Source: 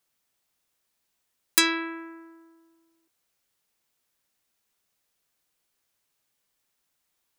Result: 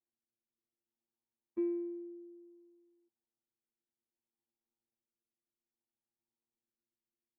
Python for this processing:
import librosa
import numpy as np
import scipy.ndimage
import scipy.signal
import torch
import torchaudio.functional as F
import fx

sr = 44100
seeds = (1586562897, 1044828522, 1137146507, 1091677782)

y = fx.formant_cascade(x, sr, vowel='u')
y = fx.robotise(y, sr, hz=115.0)
y = fx.rotary(y, sr, hz=0.6)
y = F.gain(torch.from_numpy(y), 3.0).numpy()